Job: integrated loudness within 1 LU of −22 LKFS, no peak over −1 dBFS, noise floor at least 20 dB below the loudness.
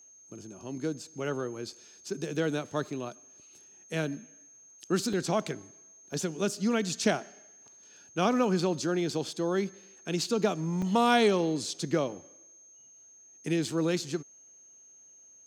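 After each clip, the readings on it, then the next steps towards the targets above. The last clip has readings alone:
number of dropouts 3; longest dropout 3.5 ms; interfering tone 6,400 Hz; level of the tone −53 dBFS; integrated loudness −30.5 LKFS; sample peak −12.0 dBFS; target loudness −22.0 LKFS
→ repair the gap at 0:05.13/0:06.13/0:10.82, 3.5 ms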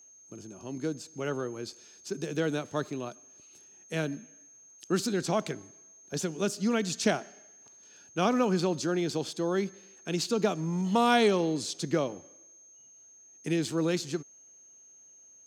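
number of dropouts 0; interfering tone 6,400 Hz; level of the tone −53 dBFS
→ notch filter 6,400 Hz, Q 30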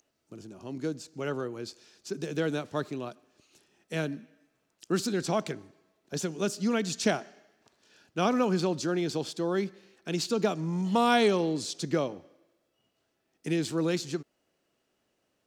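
interfering tone none found; integrated loudness −30.0 LKFS; sample peak −12.0 dBFS; target loudness −22.0 LKFS
→ level +8 dB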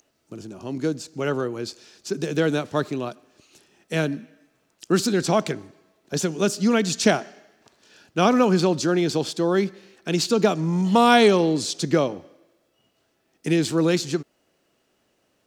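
integrated loudness −22.5 LKFS; sample peak −4.0 dBFS; background noise floor −69 dBFS

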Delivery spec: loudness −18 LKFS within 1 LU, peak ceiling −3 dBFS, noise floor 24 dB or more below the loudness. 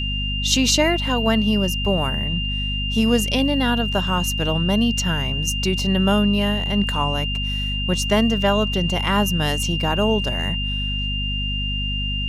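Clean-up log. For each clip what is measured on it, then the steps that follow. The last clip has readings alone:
mains hum 50 Hz; hum harmonics up to 250 Hz; level of the hum −23 dBFS; interfering tone 2,800 Hz; level of the tone −25 dBFS; integrated loudness −20.5 LKFS; sample peak −4.5 dBFS; target loudness −18.0 LKFS
→ mains-hum notches 50/100/150/200/250 Hz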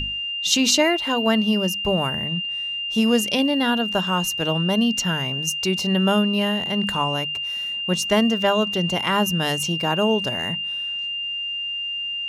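mains hum none found; interfering tone 2,800 Hz; level of the tone −25 dBFS
→ notch filter 2,800 Hz, Q 30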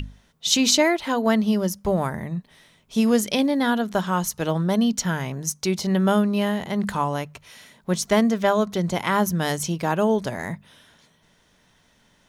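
interfering tone none found; integrated loudness −22.5 LKFS; sample peak −5.0 dBFS; target loudness −18.0 LKFS
→ level +4.5 dB
brickwall limiter −3 dBFS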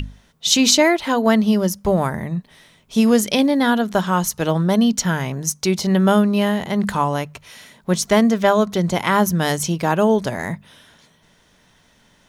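integrated loudness −18.0 LKFS; sample peak −3.0 dBFS; background noise floor −57 dBFS

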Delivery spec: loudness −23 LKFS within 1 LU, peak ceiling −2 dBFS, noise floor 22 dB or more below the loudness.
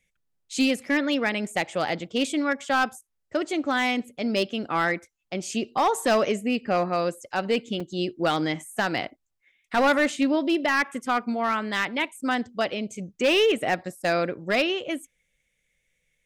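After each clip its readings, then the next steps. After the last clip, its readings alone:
share of clipped samples 0.9%; peaks flattened at −15.5 dBFS; number of dropouts 1; longest dropout 4.1 ms; integrated loudness −25.5 LKFS; sample peak −15.5 dBFS; target loudness −23.0 LKFS
→ clipped peaks rebuilt −15.5 dBFS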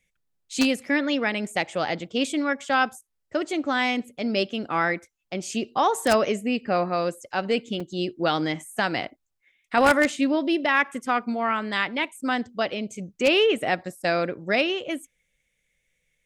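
share of clipped samples 0.0%; number of dropouts 1; longest dropout 4.1 ms
→ repair the gap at 0:07.80, 4.1 ms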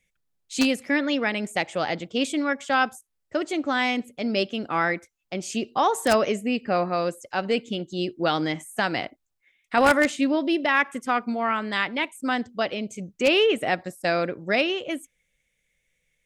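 number of dropouts 0; integrated loudness −25.0 LKFS; sample peak −6.5 dBFS; target loudness −23.0 LKFS
→ level +2 dB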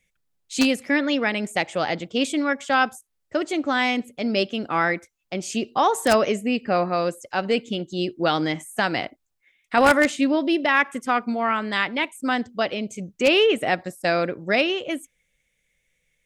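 integrated loudness −23.0 LKFS; sample peak −4.5 dBFS; background noise floor −74 dBFS

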